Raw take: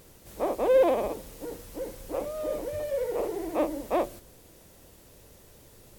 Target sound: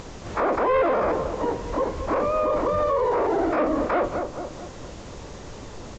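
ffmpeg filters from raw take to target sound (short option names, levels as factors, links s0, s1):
-filter_complex "[0:a]asplit=3[s0][s1][s2];[s1]asetrate=37084,aresample=44100,atempo=1.18921,volume=0.398[s3];[s2]asetrate=88200,aresample=44100,atempo=0.5,volume=0.631[s4];[s0][s3][s4]amix=inputs=3:normalize=0,acrossover=split=2600[s5][s6];[s6]acompressor=threshold=0.00178:ratio=4:attack=1:release=60[s7];[s5][s7]amix=inputs=2:normalize=0,asplit=2[s8][s9];[s9]adelay=220,lowpass=f=1200:p=1,volume=0.2,asplit=2[s10][s11];[s11]adelay=220,lowpass=f=1200:p=1,volume=0.47,asplit=2[s12][s13];[s13]adelay=220,lowpass=f=1200:p=1,volume=0.47,asplit=2[s14][s15];[s15]adelay=220,lowpass=f=1200:p=1,volume=0.47[s16];[s8][s10][s12][s14][s16]amix=inputs=5:normalize=0,aresample=16000,aeval=exprs='0.376*sin(PI/2*1.58*val(0)/0.376)':c=same,aresample=44100,alimiter=limit=0.133:level=0:latency=1:release=13,asplit=2[s17][s18];[s18]acompressor=threshold=0.0178:ratio=6,volume=1.12[s19];[s17][s19]amix=inputs=2:normalize=0"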